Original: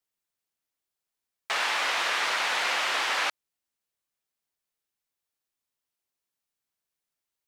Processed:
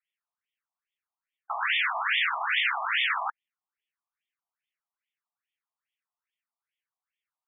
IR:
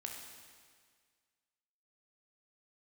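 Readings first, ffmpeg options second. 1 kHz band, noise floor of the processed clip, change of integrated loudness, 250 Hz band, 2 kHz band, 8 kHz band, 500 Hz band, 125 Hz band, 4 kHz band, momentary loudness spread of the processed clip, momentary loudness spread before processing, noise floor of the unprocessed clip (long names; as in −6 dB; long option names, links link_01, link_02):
−0.5 dB, below −85 dBFS, 0.0 dB, below −40 dB, +1.0 dB, below −40 dB, −8.0 dB, can't be measured, −2.0 dB, 6 LU, 3 LU, below −85 dBFS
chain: -af "aemphasis=mode=production:type=75fm,afftfilt=real='re*between(b*sr/1024,860*pow(2600/860,0.5+0.5*sin(2*PI*2.4*pts/sr))/1.41,860*pow(2600/860,0.5+0.5*sin(2*PI*2.4*pts/sr))*1.41)':imag='im*between(b*sr/1024,860*pow(2600/860,0.5+0.5*sin(2*PI*2.4*pts/sr))/1.41,860*pow(2600/860,0.5+0.5*sin(2*PI*2.4*pts/sr))*1.41)':win_size=1024:overlap=0.75,volume=3dB"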